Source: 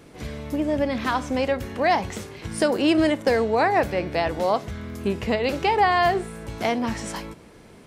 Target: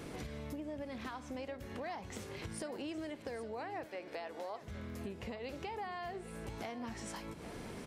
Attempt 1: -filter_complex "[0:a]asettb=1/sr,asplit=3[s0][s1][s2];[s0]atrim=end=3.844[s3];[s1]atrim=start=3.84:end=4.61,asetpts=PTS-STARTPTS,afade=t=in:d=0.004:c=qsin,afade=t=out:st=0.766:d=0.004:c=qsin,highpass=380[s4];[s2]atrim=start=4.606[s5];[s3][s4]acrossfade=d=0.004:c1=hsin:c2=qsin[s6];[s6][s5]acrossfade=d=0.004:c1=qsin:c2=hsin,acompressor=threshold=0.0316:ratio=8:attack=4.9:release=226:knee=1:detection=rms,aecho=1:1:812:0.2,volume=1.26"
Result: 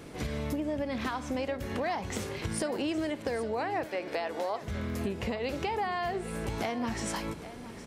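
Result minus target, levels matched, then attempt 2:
compression: peak gain reduction -10.5 dB
-filter_complex "[0:a]asettb=1/sr,asplit=3[s0][s1][s2];[s0]atrim=end=3.844[s3];[s1]atrim=start=3.84:end=4.61,asetpts=PTS-STARTPTS,afade=t=in:d=0.004:c=qsin,afade=t=out:st=0.766:d=0.004:c=qsin,highpass=380[s4];[s2]atrim=start=4.606[s5];[s3][s4]acrossfade=d=0.004:c1=hsin:c2=qsin[s6];[s6][s5]acrossfade=d=0.004:c1=qsin:c2=hsin,acompressor=threshold=0.00794:ratio=8:attack=4.9:release=226:knee=1:detection=rms,aecho=1:1:812:0.2,volume=1.26"

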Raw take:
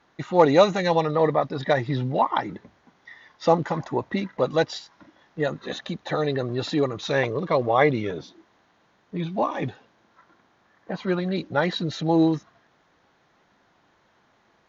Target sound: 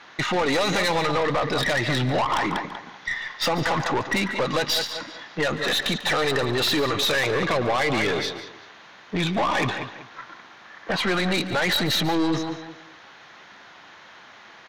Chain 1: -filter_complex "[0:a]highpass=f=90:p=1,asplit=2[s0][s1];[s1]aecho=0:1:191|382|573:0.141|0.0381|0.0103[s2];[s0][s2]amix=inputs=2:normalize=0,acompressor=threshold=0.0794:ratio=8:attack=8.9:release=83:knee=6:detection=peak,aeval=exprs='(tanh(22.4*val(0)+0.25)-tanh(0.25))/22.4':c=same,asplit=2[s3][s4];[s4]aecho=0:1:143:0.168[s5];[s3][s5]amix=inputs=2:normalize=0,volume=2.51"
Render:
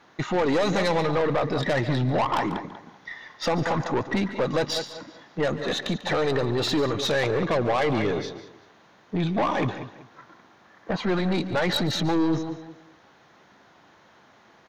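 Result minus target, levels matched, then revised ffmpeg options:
2 kHz band -4.5 dB
-filter_complex "[0:a]highpass=f=90:p=1,equalizer=f=2700:w=0.34:g=13,asplit=2[s0][s1];[s1]aecho=0:1:191|382|573:0.141|0.0381|0.0103[s2];[s0][s2]amix=inputs=2:normalize=0,acompressor=threshold=0.0794:ratio=8:attack=8.9:release=83:knee=6:detection=peak,aeval=exprs='(tanh(22.4*val(0)+0.25)-tanh(0.25))/22.4':c=same,asplit=2[s3][s4];[s4]aecho=0:1:143:0.168[s5];[s3][s5]amix=inputs=2:normalize=0,volume=2.51"

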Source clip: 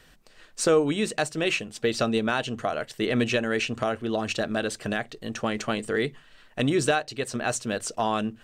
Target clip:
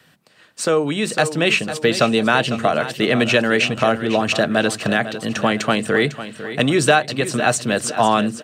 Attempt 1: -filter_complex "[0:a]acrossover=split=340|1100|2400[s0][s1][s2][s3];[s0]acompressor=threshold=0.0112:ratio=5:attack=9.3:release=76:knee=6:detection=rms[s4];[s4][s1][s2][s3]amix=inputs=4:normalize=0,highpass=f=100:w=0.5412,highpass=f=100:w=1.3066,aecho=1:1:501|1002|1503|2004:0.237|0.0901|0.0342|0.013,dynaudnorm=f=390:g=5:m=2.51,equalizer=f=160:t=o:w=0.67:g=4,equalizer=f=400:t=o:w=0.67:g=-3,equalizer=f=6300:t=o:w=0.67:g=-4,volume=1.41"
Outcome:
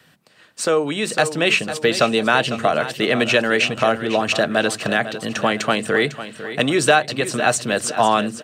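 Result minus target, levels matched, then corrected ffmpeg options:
compression: peak gain reduction +6 dB
-filter_complex "[0:a]acrossover=split=340|1100|2400[s0][s1][s2][s3];[s0]acompressor=threshold=0.0266:ratio=5:attack=9.3:release=76:knee=6:detection=rms[s4];[s4][s1][s2][s3]amix=inputs=4:normalize=0,highpass=f=100:w=0.5412,highpass=f=100:w=1.3066,aecho=1:1:501|1002|1503|2004:0.237|0.0901|0.0342|0.013,dynaudnorm=f=390:g=5:m=2.51,equalizer=f=160:t=o:w=0.67:g=4,equalizer=f=400:t=o:w=0.67:g=-3,equalizer=f=6300:t=o:w=0.67:g=-4,volume=1.41"

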